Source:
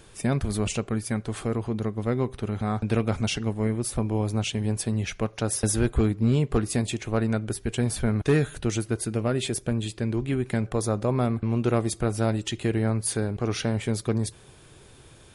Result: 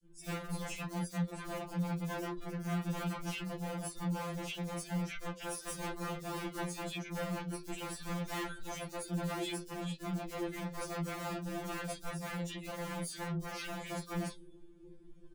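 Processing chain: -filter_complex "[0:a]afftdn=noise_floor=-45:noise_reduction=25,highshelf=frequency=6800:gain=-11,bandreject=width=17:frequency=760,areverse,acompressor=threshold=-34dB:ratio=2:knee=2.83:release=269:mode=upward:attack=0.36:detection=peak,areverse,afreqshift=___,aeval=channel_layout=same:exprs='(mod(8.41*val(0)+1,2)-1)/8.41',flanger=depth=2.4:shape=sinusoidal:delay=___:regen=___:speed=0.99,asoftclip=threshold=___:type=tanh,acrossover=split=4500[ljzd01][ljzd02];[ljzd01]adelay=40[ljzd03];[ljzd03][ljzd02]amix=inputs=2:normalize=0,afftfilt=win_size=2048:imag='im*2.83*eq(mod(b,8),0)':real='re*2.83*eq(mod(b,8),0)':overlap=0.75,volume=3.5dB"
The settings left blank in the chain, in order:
-39, 6.7, -69, -37dB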